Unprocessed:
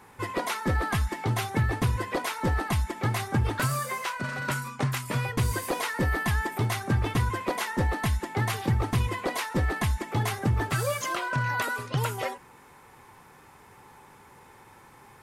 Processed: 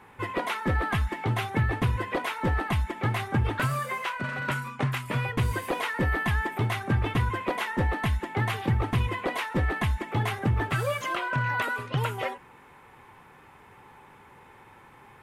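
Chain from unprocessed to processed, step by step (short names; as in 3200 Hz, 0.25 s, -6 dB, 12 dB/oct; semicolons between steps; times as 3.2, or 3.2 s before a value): resonant high shelf 3900 Hz -7.5 dB, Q 1.5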